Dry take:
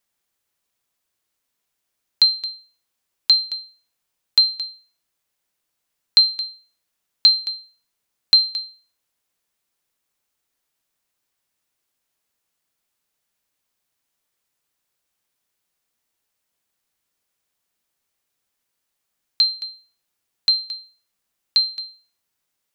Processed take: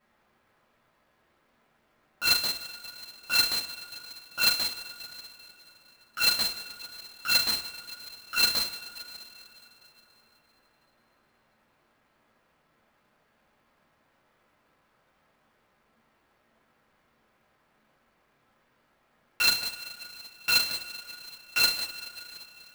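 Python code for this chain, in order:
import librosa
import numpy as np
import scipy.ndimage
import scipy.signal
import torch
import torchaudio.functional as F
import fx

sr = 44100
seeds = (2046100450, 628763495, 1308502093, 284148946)

y = fx.self_delay(x, sr, depth_ms=0.79)
y = scipy.signal.sosfilt(scipy.signal.butter(2, 1700.0, 'lowpass', fs=sr, output='sos'), y)
y = fx.over_compress(y, sr, threshold_db=-32.0, ratio=-0.5)
y = fx.rev_double_slope(y, sr, seeds[0], early_s=0.44, late_s=3.6, knee_db=-19, drr_db=-9.0)
y = fx.clock_jitter(y, sr, seeds[1], jitter_ms=0.02)
y = y * librosa.db_to_amplitude(4.5)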